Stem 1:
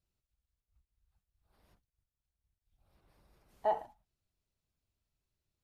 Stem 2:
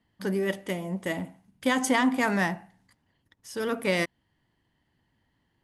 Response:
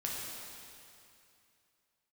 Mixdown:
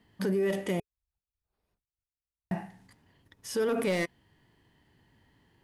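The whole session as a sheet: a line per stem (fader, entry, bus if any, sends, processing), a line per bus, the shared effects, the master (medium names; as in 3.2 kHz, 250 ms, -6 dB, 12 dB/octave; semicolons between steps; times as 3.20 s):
-12.5 dB, 0.00 s, no send, none
+2.0 dB, 0.00 s, muted 0.80–2.51 s, no send, hard clipper -21 dBFS, distortion -13 dB; harmonic-percussive split harmonic +7 dB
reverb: none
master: small resonant body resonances 420/2500 Hz, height 7 dB; peak limiter -21.5 dBFS, peak gain reduction 13 dB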